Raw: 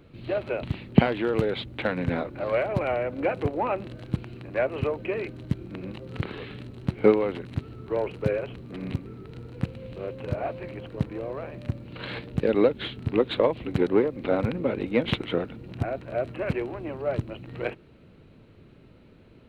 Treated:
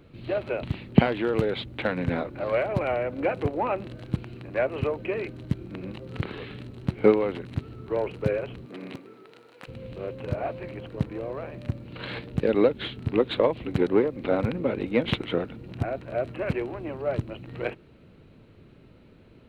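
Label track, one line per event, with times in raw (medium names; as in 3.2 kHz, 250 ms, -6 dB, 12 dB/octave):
8.650000	9.670000	high-pass 220 Hz -> 800 Hz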